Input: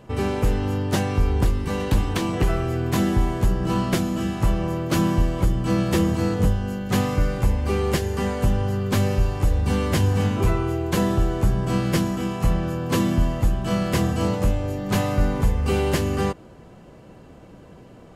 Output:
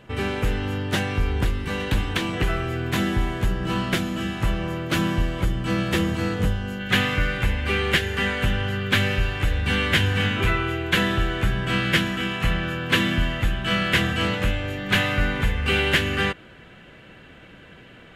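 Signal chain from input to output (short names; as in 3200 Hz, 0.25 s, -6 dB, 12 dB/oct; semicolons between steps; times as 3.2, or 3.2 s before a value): band shelf 2300 Hz +8.5 dB, from 6.79 s +15 dB; gain -3 dB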